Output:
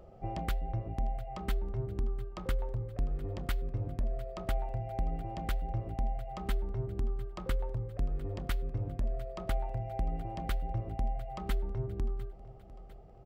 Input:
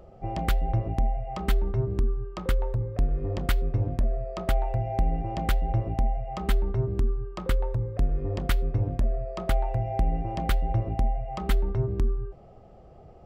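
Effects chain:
speech leveller 0.5 s
on a send: repeating echo 701 ms, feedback 52%, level −18.5 dB
on the sum: level −8.5 dB

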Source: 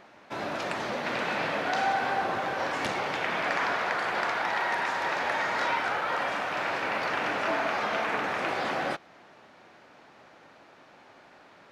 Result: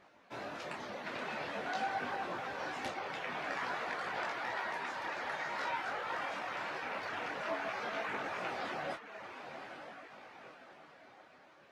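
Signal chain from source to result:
feedback delay with all-pass diffusion 920 ms, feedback 45%, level −8 dB
reverb reduction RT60 0.74 s
micro pitch shift up and down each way 17 cents
level −5 dB

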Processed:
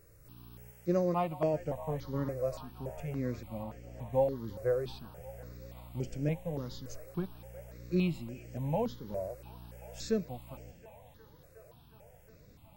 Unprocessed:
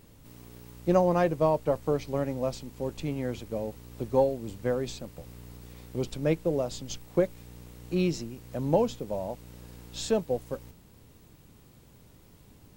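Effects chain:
0:00.71–0:01.54: low-shelf EQ 150 Hz −11 dB
harmonic and percussive parts rebalanced percussive −8 dB
0:03.63–0:04.13: high-shelf EQ 5,300 Hz −6 dB
delay with a band-pass on its return 361 ms, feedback 84%, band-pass 1,300 Hz, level −15 dB
step-sequenced phaser 3.5 Hz 880–3,800 Hz

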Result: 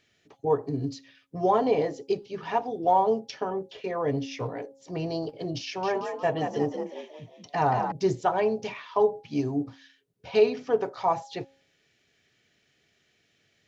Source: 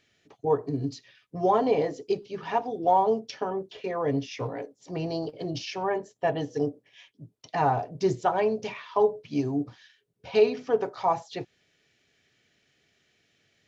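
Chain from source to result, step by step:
hum removal 272.1 Hz, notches 3
0:05.65–0:07.92: echo with shifted repeats 179 ms, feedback 44%, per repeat +56 Hz, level −6.5 dB

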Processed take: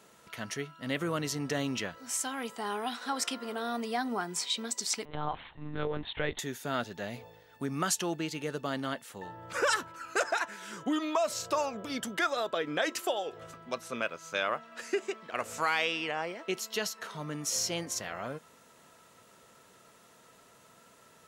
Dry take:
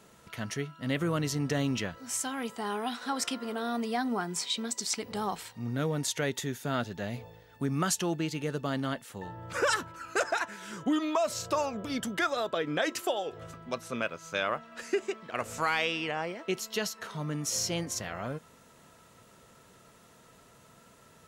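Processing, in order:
low-shelf EQ 170 Hz −11.5 dB
0:05.05–0:06.39: one-pitch LPC vocoder at 8 kHz 150 Hz

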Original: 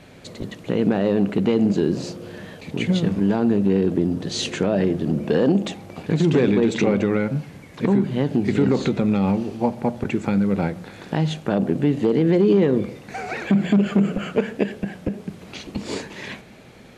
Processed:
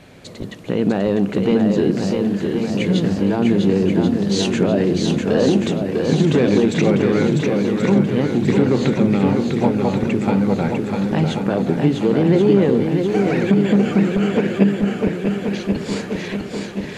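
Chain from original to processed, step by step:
feedback echo with a long and a short gap by turns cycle 1,082 ms, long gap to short 1.5 to 1, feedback 53%, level −4.5 dB
level +1.5 dB

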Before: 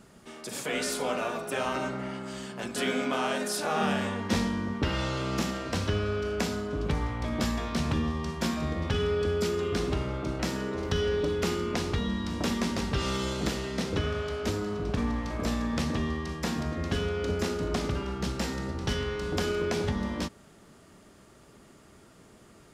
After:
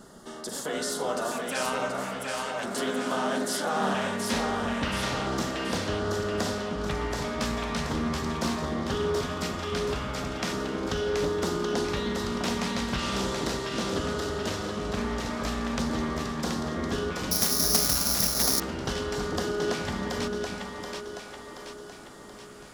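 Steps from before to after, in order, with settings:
parametric band 90 Hz −9 dB 1.9 octaves
in parallel at +2.5 dB: downward compressor, threshold −45 dBFS, peak gain reduction 19 dB
on the sum: auto-filter notch square 0.38 Hz 380–2,400 Hz
on a send: echo with a time of its own for lows and highs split 340 Hz, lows 303 ms, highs 728 ms, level −3.5 dB
0:17.31–0:18.60: on the sum: bad sample-rate conversion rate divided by 8×, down filtered, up zero stuff
highs frequency-modulated by the lows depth 0.26 ms

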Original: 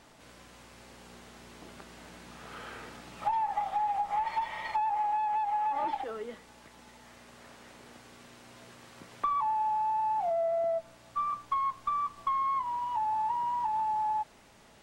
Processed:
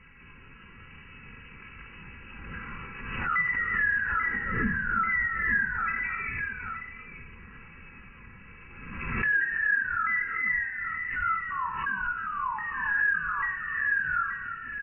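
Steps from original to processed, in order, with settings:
pitch shifter swept by a sawtooth +11 semitones, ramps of 839 ms
high-pass filter 64 Hz 6 dB per octave
low-shelf EQ 150 Hz +4.5 dB
on a send: multi-tap delay 318/424/877 ms −12/−19.5/−11.5 dB
on the sum: brickwall limiter −27.5 dBFS, peak gain reduction 7 dB
comb filter 3.3 ms, depth 60%
rectangular room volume 1,900 cubic metres, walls furnished, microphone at 2.9 metres
voice inversion scrambler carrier 2,900 Hz
spectral tilt −3.5 dB per octave
phaser with its sweep stopped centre 1,600 Hz, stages 4
background raised ahead of every attack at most 40 dB per second
level +3.5 dB

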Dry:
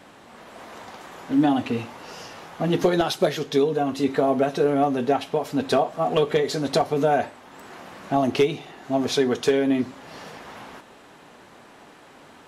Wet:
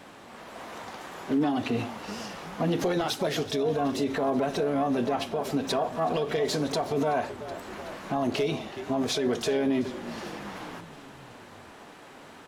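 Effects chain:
echo with shifted repeats 375 ms, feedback 60%, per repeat −34 Hz, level −19.5 dB
brickwall limiter −19 dBFS, peak gain reduction 10.5 dB
pitch-shifted copies added +7 semitones −12 dB

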